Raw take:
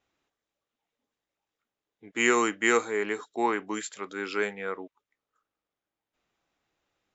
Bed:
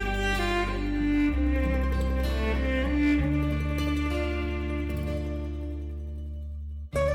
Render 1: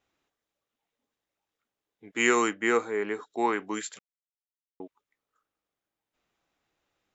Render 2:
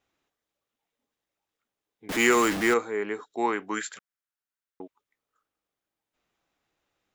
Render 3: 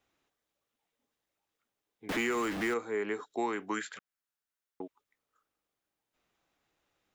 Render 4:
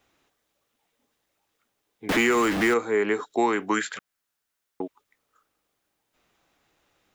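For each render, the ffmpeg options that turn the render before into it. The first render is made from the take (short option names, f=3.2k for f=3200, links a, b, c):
-filter_complex "[0:a]asettb=1/sr,asplit=3[a][b][c];[a]atrim=end=2.534[d];[b]atrim=start=2.53:end=3.3,asetpts=PTS-STARTPTS,afade=t=in:d=0.004:c=qsin,afade=t=out:st=0.766:d=0.004:c=qsin,highshelf=f=2.7k:g=-10[e];[c]atrim=start=3.296[f];[d][e]acrossfade=d=0.004:c1=hsin:c2=qsin[g];[g][f]acrossfade=d=0.004:c1=qsin:c2=hsin,asplit=3[h][i][j];[h]atrim=end=3.99,asetpts=PTS-STARTPTS,afade=t=out:st=3.986:d=0.004:c=hsin[k];[i]atrim=start=3.99:end=4.8,asetpts=PTS-STARTPTS,volume=0[l];[j]atrim=start=4.8,asetpts=PTS-STARTPTS,afade=t=in:d=0.004:c=hsin[m];[k][l][m]concat=n=3:v=0:a=1"
-filter_complex "[0:a]asettb=1/sr,asplit=3[a][b][c];[a]atrim=end=2.094[d];[b]atrim=start=2.09:end=2.74,asetpts=PTS-STARTPTS,afade=t=in:d=0.004:c=qsin,afade=t=out:st=0.646:d=0.004:c=qsin,aeval=exprs='val(0)+0.5*0.0562*sgn(val(0))':c=same[e];[c]atrim=start=2.736[f];[d][e]acrossfade=d=0.004:c1=hsin:c2=qsin[g];[g][f]acrossfade=d=0.004:c1=qsin:c2=hsin,asettb=1/sr,asplit=3[h][i][j];[h]atrim=end=3.684[k];[i]atrim=start=3.68:end=4.82,asetpts=PTS-STARTPTS,afade=t=in:d=0.004:c=qsin,afade=t=out:st=1.136:d=0.004:c=qsin,equalizer=f=1.5k:t=o:w=0.77:g=10[l];[j]atrim=start=4.816[m];[k][l]acrossfade=d=0.004:c1=hsin:c2=qsin[n];[n][m]acrossfade=d=0.004:c1=qsin:c2=hsin"
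-filter_complex "[0:a]acrossover=split=380|4000[a][b][c];[a]acompressor=threshold=-36dB:ratio=4[d];[b]acompressor=threshold=-33dB:ratio=4[e];[c]acompressor=threshold=-50dB:ratio=4[f];[d][e][f]amix=inputs=3:normalize=0"
-af "volume=10dB"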